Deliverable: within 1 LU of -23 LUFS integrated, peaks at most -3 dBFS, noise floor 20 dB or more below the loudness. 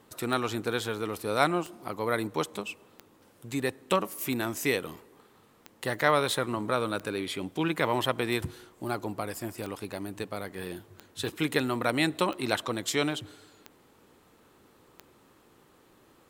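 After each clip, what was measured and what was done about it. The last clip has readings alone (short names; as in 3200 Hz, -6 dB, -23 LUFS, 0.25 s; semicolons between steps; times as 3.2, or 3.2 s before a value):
clicks 12; loudness -30.5 LUFS; peak -7.0 dBFS; loudness target -23.0 LUFS
-> de-click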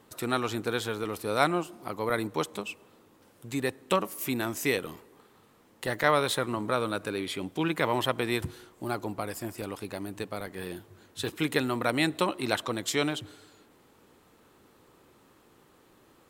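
clicks 0; loudness -30.5 LUFS; peak -7.0 dBFS; loudness target -23.0 LUFS
-> gain +7.5 dB; limiter -3 dBFS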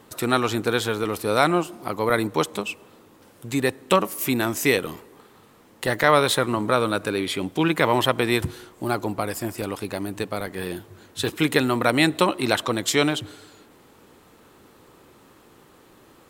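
loudness -23.0 LUFS; peak -3.0 dBFS; noise floor -53 dBFS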